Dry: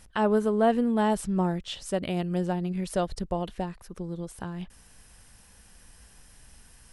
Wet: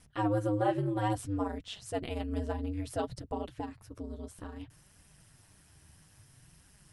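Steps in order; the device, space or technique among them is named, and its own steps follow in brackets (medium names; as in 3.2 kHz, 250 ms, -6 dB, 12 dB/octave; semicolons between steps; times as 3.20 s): alien voice (ring modulator 100 Hz; flange 0.6 Hz, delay 3.8 ms, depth 9.3 ms, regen -23%)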